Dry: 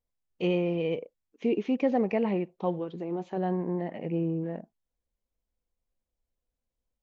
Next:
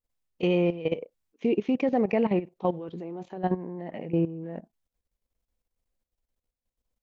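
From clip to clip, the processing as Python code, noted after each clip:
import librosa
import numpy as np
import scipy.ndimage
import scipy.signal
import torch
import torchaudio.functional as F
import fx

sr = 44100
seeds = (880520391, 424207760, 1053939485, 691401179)

y = fx.level_steps(x, sr, step_db=14)
y = y * librosa.db_to_amplitude(5.5)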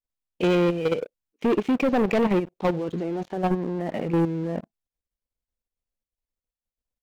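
y = fx.leveller(x, sr, passes=3)
y = y * librosa.db_to_amplitude(-2.5)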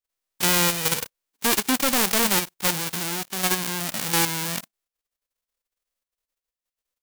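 y = fx.envelope_flatten(x, sr, power=0.1)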